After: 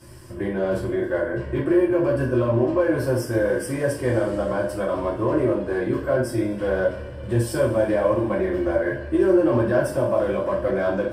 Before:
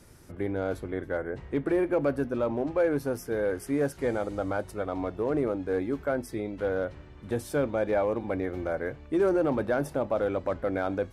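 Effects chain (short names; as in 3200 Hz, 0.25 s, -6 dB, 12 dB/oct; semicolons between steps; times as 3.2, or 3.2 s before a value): ripple EQ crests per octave 1.3, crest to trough 9 dB; limiter -20.5 dBFS, peak gain reduction 7.5 dB; two-slope reverb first 0.39 s, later 3 s, from -21 dB, DRR -7.5 dB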